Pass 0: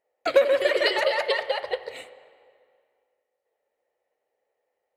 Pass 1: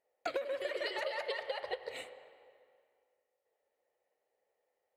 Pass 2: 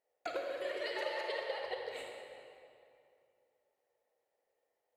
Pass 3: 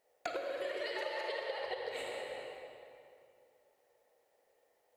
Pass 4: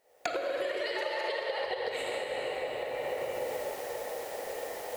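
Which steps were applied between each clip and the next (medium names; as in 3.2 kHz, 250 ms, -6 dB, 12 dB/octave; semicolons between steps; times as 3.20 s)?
compression 8:1, threshold -30 dBFS, peak gain reduction 17 dB; trim -4 dB
reverberation RT60 2.4 s, pre-delay 31 ms, DRR 1 dB; trim -3.5 dB
compression 4:1, threshold -47 dBFS, peak gain reduction 12 dB; trim +9.5 dB
recorder AGC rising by 34 dB/s; trim +5 dB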